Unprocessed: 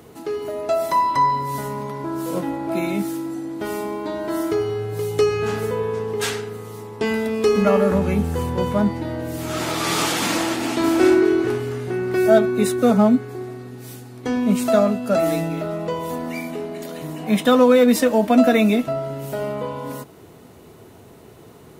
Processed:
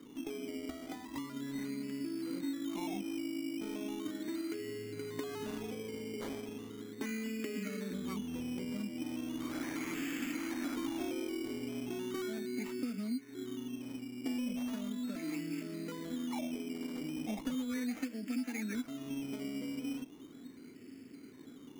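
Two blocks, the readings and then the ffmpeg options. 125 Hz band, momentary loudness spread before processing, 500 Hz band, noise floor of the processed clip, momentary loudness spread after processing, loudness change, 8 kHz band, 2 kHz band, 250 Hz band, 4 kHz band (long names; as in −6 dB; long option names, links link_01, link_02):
−22.0 dB, 14 LU, −24.5 dB, −52 dBFS, 6 LU, −19.0 dB, −17.5 dB, −17.5 dB, −15.5 dB, −17.0 dB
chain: -filter_complex "[0:a]acompressor=threshold=-26dB:ratio=2,asplit=3[link_01][link_02][link_03];[link_01]bandpass=frequency=270:width_type=q:width=8,volume=0dB[link_04];[link_02]bandpass=frequency=2290:width_type=q:width=8,volume=-6dB[link_05];[link_03]bandpass=frequency=3010:width_type=q:width=8,volume=-9dB[link_06];[link_04][link_05][link_06]amix=inputs=3:normalize=0,acrossover=split=520|1200[link_07][link_08][link_09];[link_07]acompressor=threshold=-42dB:ratio=4[link_10];[link_08]acompressor=threshold=-59dB:ratio=4[link_11];[link_09]acompressor=threshold=-48dB:ratio=4[link_12];[link_10][link_11][link_12]amix=inputs=3:normalize=0,acrusher=samples=13:mix=1:aa=0.000001:lfo=1:lforange=7.8:lforate=0.37,volume=4.5dB"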